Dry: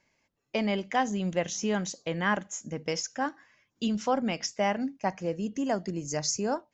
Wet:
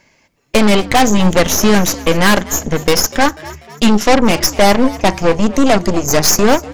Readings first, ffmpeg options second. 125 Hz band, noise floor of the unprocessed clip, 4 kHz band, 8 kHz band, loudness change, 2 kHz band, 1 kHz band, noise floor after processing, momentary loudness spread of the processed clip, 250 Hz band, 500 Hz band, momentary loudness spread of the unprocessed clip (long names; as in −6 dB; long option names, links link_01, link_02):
+17.5 dB, −76 dBFS, +19.5 dB, can't be measured, +17.5 dB, +17.0 dB, +16.0 dB, −55 dBFS, 5 LU, +17.5 dB, +17.5 dB, 6 LU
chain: -filter_complex "[0:a]aeval=exprs='0.211*sin(PI/2*2.24*val(0)/0.211)':channel_layout=same,aeval=exprs='0.211*(cos(1*acos(clip(val(0)/0.211,-1,1)))-cos(1*PI/2))+0.075*(cos(4*acos(clip(val(0)/0.211,-1,1)))-cos(4*PI/2))':channel_layout=same,asplit=5[link_01][link_02][link_03][link_04][link_05];[link_02]adelay=245,afreqshift=73,volume=-18.5dB[link_06];[link_03]adelay=490,afreqshift=146,volume=-25.1dB[link_07];[link_04]adelay=735,afreqshift=219,volume=-31.6dB[link_08];[link_05]adelay=980,afreqshift=292,volume=-38.2dB[link_09];[link_01][link_06][link_07][link_08][link_09]amix=inputs=5:normalize=0,volume=7.5dB"